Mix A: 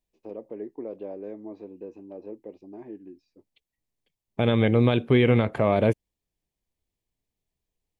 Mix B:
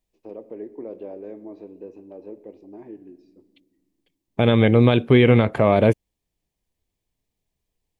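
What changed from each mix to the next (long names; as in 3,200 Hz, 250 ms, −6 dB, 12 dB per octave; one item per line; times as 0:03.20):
second voice +5.0 dB
reverb: on, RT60 1.3 s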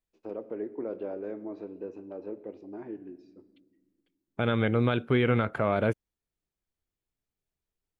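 second voice −10.5 dB
master: add parametric band 1,400 Hz +14 dB 0.34 octaves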